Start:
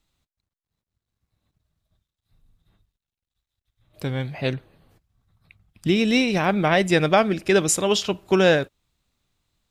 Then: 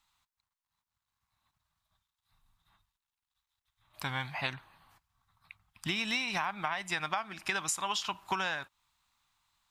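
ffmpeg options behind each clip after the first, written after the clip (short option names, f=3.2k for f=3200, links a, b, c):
-af "lowshelf=f=670:t=q:w=3:g=-12,acompressor=threshold=-29dB:ratio=16"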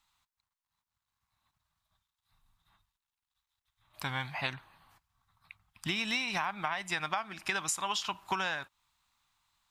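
-af anull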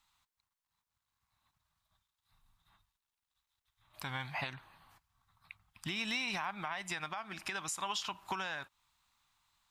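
-af "alimiter=level_in=2.5dB:limit=-24dB:level=0:latency=1:release=199,volume=-2.5dB"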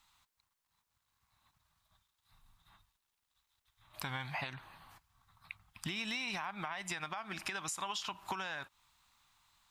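-af "acompressor=threshold=-43dB:ratio=3,volume=5dB"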